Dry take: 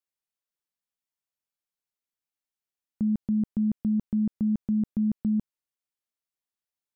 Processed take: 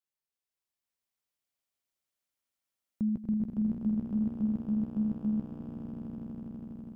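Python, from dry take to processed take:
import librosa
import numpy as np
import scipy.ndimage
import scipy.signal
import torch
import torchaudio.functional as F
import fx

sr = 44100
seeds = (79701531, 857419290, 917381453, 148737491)

y = fx.echo_swell(x, sr, ms=82, loudest=8, wet_db=-5.0)
y = y * 10.0 ** (-4.0 / 20.0)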